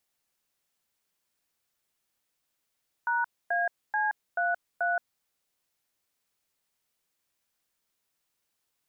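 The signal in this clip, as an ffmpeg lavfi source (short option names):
-f lavfi -i "aevalsrc='0.0447*clip(min(mod(t,0.434),0.174-mod(t,0.434))/0.002,0,1)*(eq(floor(t/0.434),0)*(sin(2*PI*941*mod(t,0.434))+sin(2*PI*1477*mod(t,0.434)))+eq(floor(t/0.434),1)*(sin(2*PI*697*mod(t,0.434))+sin(2*PI*1633*mod(t,0.434)))+eq(floor(t/0.434),2)*(sin(2*PI*852*mod(t,0.434))+sin(2*PI*1633*mod(t,0.434)))+eq(floor(t/0.434),3)*(sin(2*PI*697*mod(t,0.434))+sin(2*PI*1477*mod(t,0.434)))+eq(floor(t/0.434),4)*(sin(2*PI*697*mod(t,0.434))+sin(2*PI*1477*mod(t,0.434))))':d=2.17:s=44100"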